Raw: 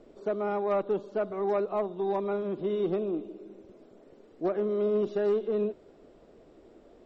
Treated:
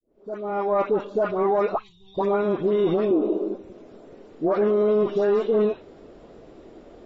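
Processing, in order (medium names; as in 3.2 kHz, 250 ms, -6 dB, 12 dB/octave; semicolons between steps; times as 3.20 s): fade-in on the opening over 1.19 s; 3.10–3.55 s: graphic EQ 125/250/500/1000/2000 Hz -12/+12/+10/+5/-6 dB; vibrato 1.3 Hz 21 cents; dynamic bell 1 kHz, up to +6 dB, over -43 dBFS, Q 1.1; 1.74–2.17 s: elliptic band-stop 110–3400 Hz, stop band 40 dB; phase dispersion highs, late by 99 ms, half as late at 1.3 kHz; peak limiter -22.5 dBFS, peak gain reduction 10 dB; trim +8.5 dB; AAC 24 kbps 22.05 kHz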